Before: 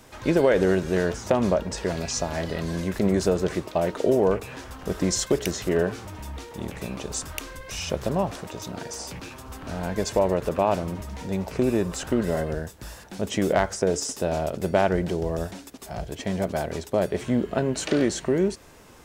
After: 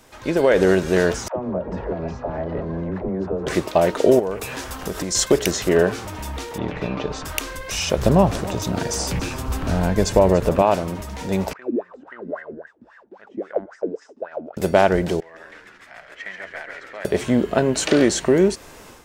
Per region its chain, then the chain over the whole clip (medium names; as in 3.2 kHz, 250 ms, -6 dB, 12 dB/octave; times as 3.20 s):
1.28–3.47 s: compression, threshold -28 dBFS + low-pass 1 kHz + phase dispersion lows, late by 89 ms, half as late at 380 Hz
4.19–5.15 s: treble shelf 6.3 kHz +6.5 dB + compression 4:1, threshold -29 dBFS
6.58–7.25 s: distance through air 250 m + comb 6.7 ms, depth 33%
7.98–10.62 s: bass shelf 220 Hz +11.5 dB + delay 288 ms -16.5 dB
11.53–14.57 s: distance through air 63 m + wah-wah 3.7 Hz 230–1900 Hz, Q 11
15.20–17.05 s: band-pass filter 1.9 kHz, Q 4.4 + frequency-shifting echo 137 ms, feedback 55%, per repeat -100 Hz, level -5 dB
whole clip: peaking EQ 100 Hz -4.5 dB 2.7 oct; level rider gain up to 10 dB